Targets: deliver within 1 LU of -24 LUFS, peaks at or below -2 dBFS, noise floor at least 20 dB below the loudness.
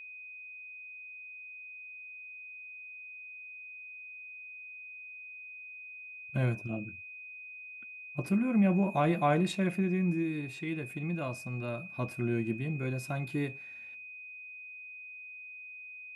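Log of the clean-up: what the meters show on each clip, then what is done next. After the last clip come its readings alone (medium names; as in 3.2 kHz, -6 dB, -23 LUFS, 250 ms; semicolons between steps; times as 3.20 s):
steady tone 2.5 kHz; tone level -44 dBFS; loudness -35.5 LUFS; peak level -15.5 dBFS; loudness target -24.0 LUFS
-> band-stop 2.5 kHz, Q 30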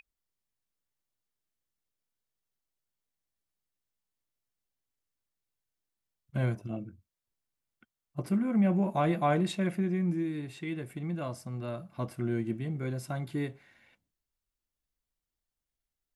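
steady tone not found; loudness -32.0 LUFS; peak level -15.5 dBFS; loudness target -24.0 LUFS
-> trim +8 dB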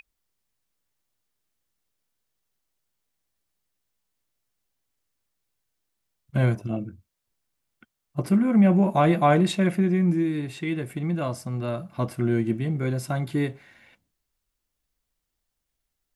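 loudness -24.0 LUFS; peak level -7.5 dBFS; noise floor -81 dBFS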